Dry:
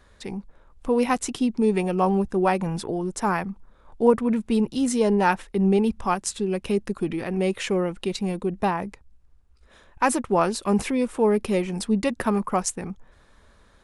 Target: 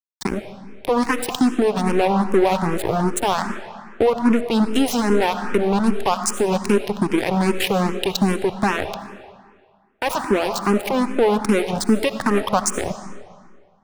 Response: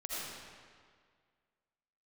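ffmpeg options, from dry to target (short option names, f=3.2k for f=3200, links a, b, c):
-filter_complex "[0:a]lowshelf=f=74:g=-10,acompressor=threshold=-33dB:ratio=3,aeval=exprs='sgn(val(0))*max(abs(val(0))-0.0158,0)':c=same,asplit=2[a][b];[1:a]atrim=start_sample=2205[c];[b][c]afir=irnorm=-1:irlink=0,volume=-11.5dB[d];[a][d]amix=inputs=2:normalize=0,alimiter=level_in=26dB:limit=-1dB:release=50:level=0:latency=1,asplit=2[e][f];[f]afreqshift=2.5[g];[e][g]amix=inputs=2:normalize=1,volume=-3.5dB"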